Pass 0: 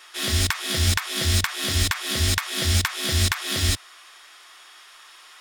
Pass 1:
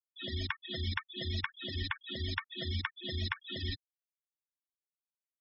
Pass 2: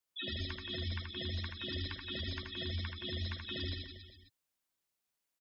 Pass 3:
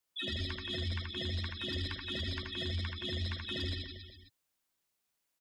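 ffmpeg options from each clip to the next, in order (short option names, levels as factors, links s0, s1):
-filter_complex "[0:a]acrossover=split=5800[s0][s1];[s1]acompressor=threshold=0.0178:ratio=4:attack=1:release=60[s2];[s0][s2]amix=inputs=2:normalize=0,afftfilt=real='re*gte(hypot(re,im),0.1)':imag='im*gte(hypot(re,im),0.1)':win_size=1024:overlap=0.75,lowshelf=f=110:g=-9,volume=0.355"
-filter_complex "[0:a]acompressor=threshold=0.0112:ratio=6,alimiter=level_in=5.31:limit=0.0631:level=0:latency=1:release=441,volume=0.188,asplit=2[s0][s1];[s1]aecho=0:1:80|172|277.8|399.5|539.4:0.631|0.398|0.251|0.158|0.1[s2];[s0][s2]amix=inputs=2:normalize=0,volume=2.37"
-af "asoftclip=type=tanh:threshold=0.0282,volume=1.5"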